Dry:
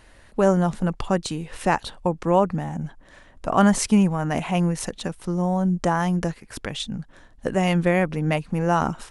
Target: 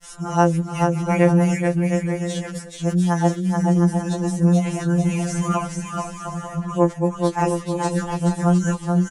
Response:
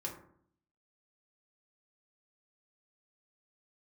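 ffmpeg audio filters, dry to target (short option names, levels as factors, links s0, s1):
-filter_complex "[0:a]areverse,deesser=0.75,lowshelf=f=66:g=-8.5,acompressor=mode=upward:threshold=0.00891:ratio=2.5,aexciter=amount=3.3:drive=7.4:freq=5600,lowpass=8000,asplit=2[s0][s1];[s1]aecho=0:1:430|709.5|891.2|1009|1086:0.631|0.398|0.251|0.158|0.1[s2];[s0][s2]amix=inputs=2:normalize=0,afftfilt=real='re*2.83*eq(mod(b,8),0)':imag='im*2.83*eq(mod(b,8),0)':win_size=2048:overlap=0.75"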